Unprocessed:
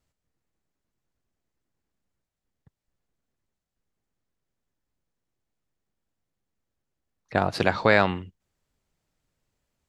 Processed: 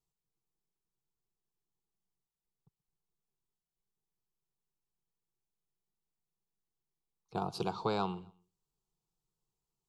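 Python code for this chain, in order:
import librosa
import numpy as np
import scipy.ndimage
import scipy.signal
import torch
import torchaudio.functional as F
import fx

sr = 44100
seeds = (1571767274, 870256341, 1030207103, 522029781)

y = fx.peak_eq(x, sr, hz=1700.0, db=-13.5, octaves=0.39)
y = fx.fixed_phaser(y, sr, hz=390.0, stages=8)
y = fx.echo_feedback(y, sr, ms=129, feedback_pct=39, wet_db=-24)
y = y * 10.0 ** (-8.0 / 20.0)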